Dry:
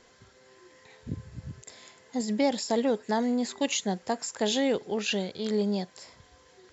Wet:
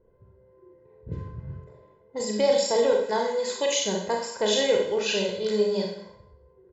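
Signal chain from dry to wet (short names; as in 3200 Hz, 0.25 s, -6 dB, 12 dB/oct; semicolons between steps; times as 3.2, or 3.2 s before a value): low-pass opened by the level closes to 340 Hz, open at -25.5 dBFS; 2.92–3.73 low shelf 140 Hz -11 dB; comb 2 ms, depth 75%; Schroeder reverb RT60 0.64 s, combs from 30 ms, DRR 0 dB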